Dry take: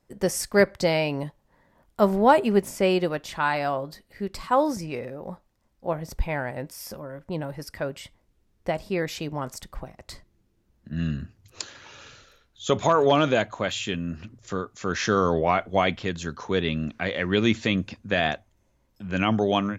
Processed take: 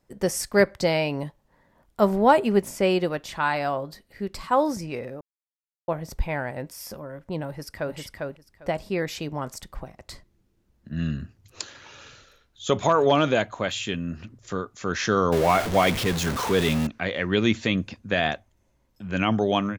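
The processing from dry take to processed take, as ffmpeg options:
-filter_complex "[0:a]asplit=2[s0][s1];[s1]afade=t=in:st=7.47:d=0.01,afade=t=out:st=7.96:d=0.01,aecho=0:1:400|800|1200:0.749894|0.112484|0.0168726[s2];[s0][s2]amix=inputs=2:normalize=0,asettb=1/sr,asplit=3[s3][s4][s5];[s3]atrim=end=15.324[s6];[s4]atrim=start=15.32:end=16.87,asetpts=PTS-STARTPTS,afade=t=in:d=0.004:c=qsin,afade=t=out:st=1.546:d=0.004:c=qsin,aeval=exprs='val(0)+0.5*0.0668*sgn(val(0))':c=same[s7];[s5]atrim=start=16.866[s8];[s6][s7]acrossfade=d=0.004:c1=hsin:c2=qsin[s9];[s9][s8]acrossfade=d=0.004:c1=qsin:c2=hsin,asplit=3[s10][s11][s12];[s10]atrim=end=5.21,asetpts=PTS-STARTPTS,afade=t=out:st=5.206:d=0.004:c=hsin[s13];[s11]atrim=start=5.21:end=5.88,asetpts=PTS-STARTPTS,volume=0[s14];[s12]atrim=start=5.88,asetpts=PTS-STARTPTS,afade=t=in:d=0.004:c=hsin[s15];[s13][s14][s15]concat=n=3:v=0:a=1"

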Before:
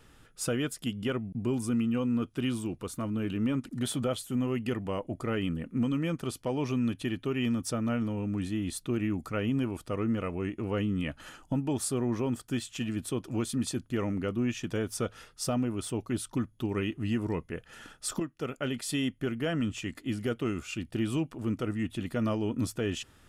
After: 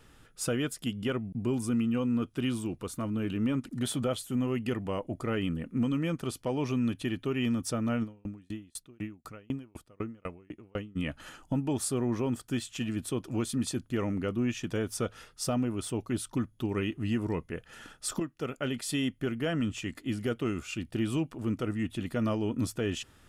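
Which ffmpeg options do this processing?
-filter_complex "[0:a]asplit=3[s0][s1][s2];[s0]afade=t=out:st=8.03:d=0.02[s3];[s1]aeval=exprs='val(0)*pow(10,-36*if(lt(mod(4*n/s,1),2*abs(4)/1000),1-mod(4*n/s,1)/(2*abs(4)/1000),(mod(4*n/s,1)-2*abs(4)/1000)/(1-2*abs(4)/1000))/20)':c=same,afade=t=in:st=8.03:d=0.02,afade=t=out:st=10.95:d=0.02[s4];[s2]afade=t=in:st=10.95:d=0.02[s5];[s3][s4][s5]amix=inputs=3:normalize=0"

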